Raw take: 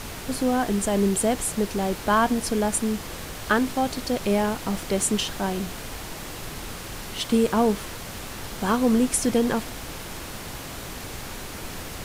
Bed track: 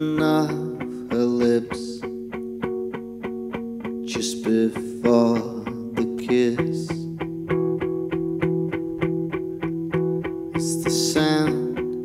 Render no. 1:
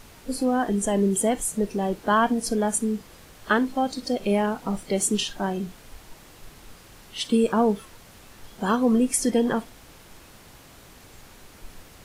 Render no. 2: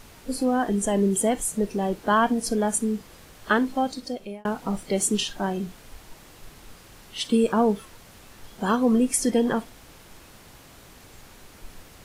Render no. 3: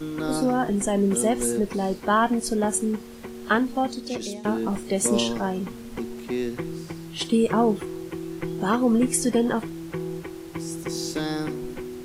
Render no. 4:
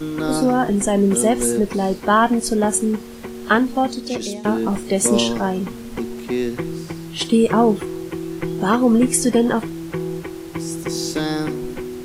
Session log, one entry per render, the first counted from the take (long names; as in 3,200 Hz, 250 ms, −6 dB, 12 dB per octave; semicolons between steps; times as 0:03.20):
noise reduction from a noise print 13 dB
0:03.81–0:04.45: fade out
mix in bed track −8.5 dB
level +5.5 dB